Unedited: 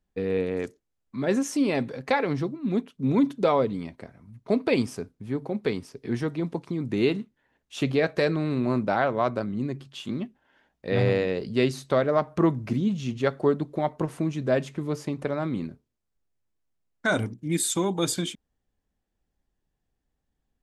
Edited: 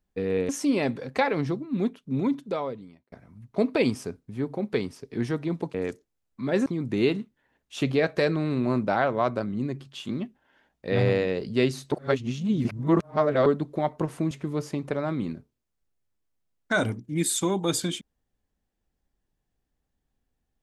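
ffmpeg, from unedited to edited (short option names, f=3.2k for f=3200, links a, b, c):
-filter_complex "[0:a]asplit=8[a][b][c][d][e][f][g][h];[a]atrim=end=0.492[i];[b]atrim=start=1.408:end=4.04,asetpts=PTS-STARTPTS,afade=t=out:st=1.302:d=1.33[j];[c]atrim=start=4.04:end=6.662,asetpts=PTS-STARTPTS,afade=t=in:d=0.004:c=hsin[k];[d]atrim=start=0.488:end=1.412[l];[e]atrim=start=6.658:end=11.922[m];[f]atrim=start=11.918:end=13.462,asetpts=PTS-STARTPTS,areverse[n];[g]atrim=start=13.458:end=14.312[o];[h]atrim=start=14.648[p];[j][k]concat=n=2:v=0:a=1[q];[i][q]acrossfade=d=0.004:c1=hsin:c2=hsin[r];[r][l]acrossfade=d=0.004:c1=hsin:c2=hsin[s];[s][m]acrossfade=d=0.004:c1=hsin:c2=hsin[t];[t][n]acrossfade=d=0.004:c1=hsin:c2=hsin[u];[u][o]acrossfade=d=0.004:c1=hsin:c2=hsin[v];[v][p]acrossfade=d=0.004:c1=hsin:c2=hsin"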